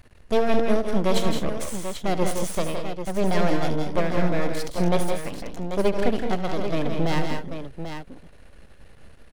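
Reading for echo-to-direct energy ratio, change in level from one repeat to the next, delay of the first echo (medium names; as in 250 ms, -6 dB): -2.5 dB, no regular repeats, 73 ms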